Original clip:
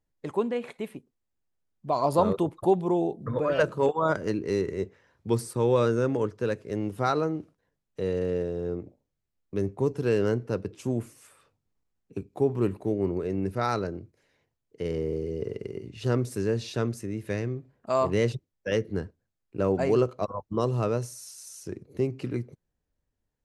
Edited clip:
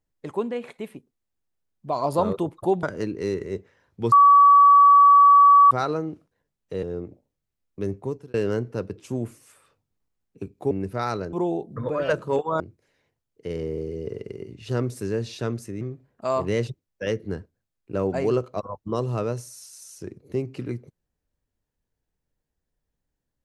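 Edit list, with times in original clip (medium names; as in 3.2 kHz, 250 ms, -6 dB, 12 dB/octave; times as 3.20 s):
2.83–4.10 s: move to 13.95 s
5.39–6.98 s: bleep 1.14 kHz -9.5 dBFS
8.10–8.58 s: delete
9.71–10.09 s: fade out
12.46–13.33 s: delete
17.16–17.46 s: delete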